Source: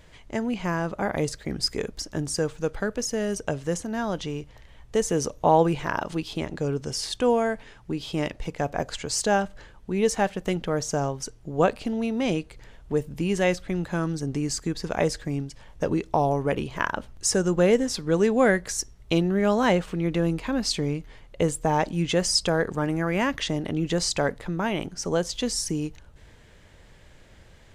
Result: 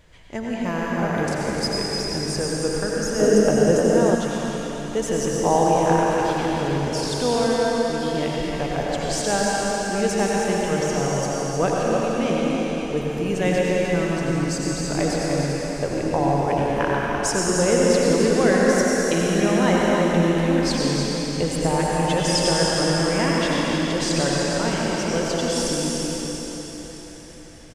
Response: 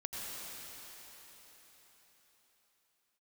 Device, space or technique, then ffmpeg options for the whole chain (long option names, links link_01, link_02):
cave: -filter_complex "[0:a]aecho=1:1:304:0.398[link_01];[1:a]atrim=start_sample=2205[link_02];[link_01][link_02]afir=irnorm=-1:irlink=0,asettb=1/sr,asplit=3[link_03][link_04][link_05];[link_03]atrim=end=3.194[link_06];[link_04]atrim=start=3.19:end=4.15,asetpts=PTS-STARTPTS,afade=type=in:duration=0.004:curve=qsin,afade=type=out:start_time=0.956:duration=0.004:curve=qsin,equalizer=frequency=380:width_type=o:width=2.3:gain=10[link_07];[link_05]atrim=start=4.146[link_08];[link_06][link_07]acrossfade=duration=0.004:curve1=hsin:curve2=qsin[link_09];[link_09][link_08]acrossfade=duration=0.004:curve1=qsin:curve2=hsin,volume=2dB"